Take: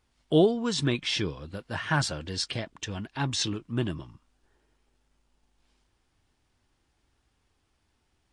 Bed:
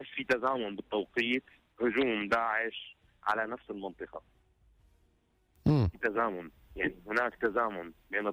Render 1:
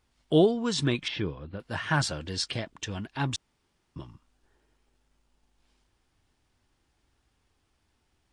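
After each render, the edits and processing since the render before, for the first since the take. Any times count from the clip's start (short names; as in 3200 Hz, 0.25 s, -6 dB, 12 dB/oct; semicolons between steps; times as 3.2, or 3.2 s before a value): 1.08–1.6 air absorption 330 m; 3.36–3.96 room tone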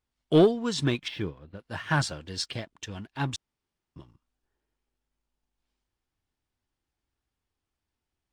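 sample leveller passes 1; upward expander 1.5:1, over -38 dBFS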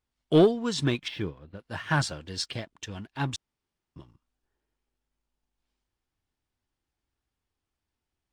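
nothing audible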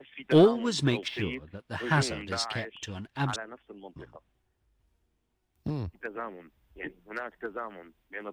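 add bed -7 dB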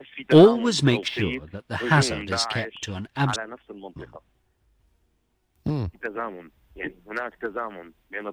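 gain +6.5 dB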